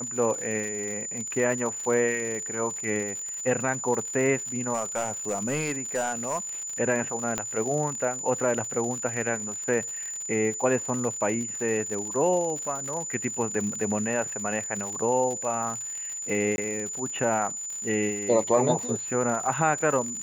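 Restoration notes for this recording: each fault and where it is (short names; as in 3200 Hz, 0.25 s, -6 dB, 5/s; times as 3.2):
crackle 97/s -32 dBFS
tone 7000 Hz -32 dBFS
4.73–6.38 clipped -22 dBFS
7.38 pop -12 dBFS
16.56–16.58 gap 21 ms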